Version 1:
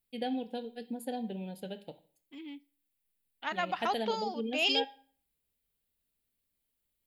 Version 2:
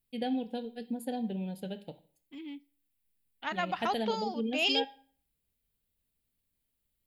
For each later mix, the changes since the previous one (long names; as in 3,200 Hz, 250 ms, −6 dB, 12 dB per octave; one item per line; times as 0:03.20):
master: add bass and treble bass +6 dB, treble 0 dB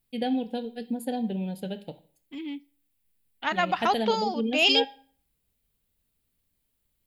first voice +5.0 dB
second voice +7.5 dB